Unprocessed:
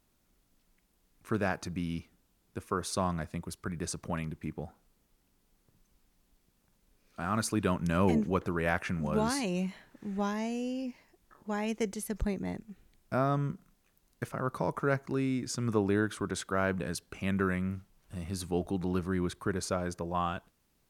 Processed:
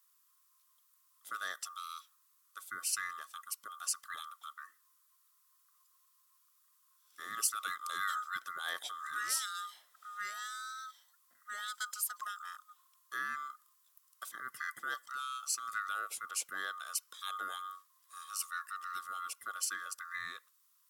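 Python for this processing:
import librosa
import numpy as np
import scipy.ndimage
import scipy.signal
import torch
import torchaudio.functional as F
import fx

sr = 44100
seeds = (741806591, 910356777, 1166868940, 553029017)

y = fx.band_swap(x, sr, width_hz=1000)
y = np.diff(y, prepend=0.0)
y = F.gain(torch.from_numpy(y), 4.0).numpy()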